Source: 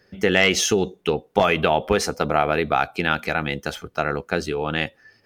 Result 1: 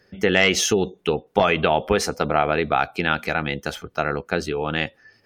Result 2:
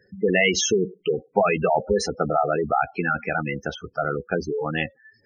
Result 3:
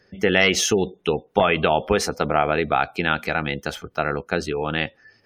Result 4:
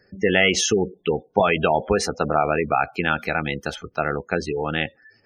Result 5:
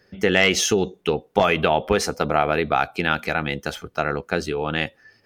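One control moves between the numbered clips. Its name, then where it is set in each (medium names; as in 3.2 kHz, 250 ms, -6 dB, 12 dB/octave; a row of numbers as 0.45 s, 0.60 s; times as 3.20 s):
spectral gate, under each frame's peak: -45 dB, -10 dB, -35 dB, -20 dB, -60 dB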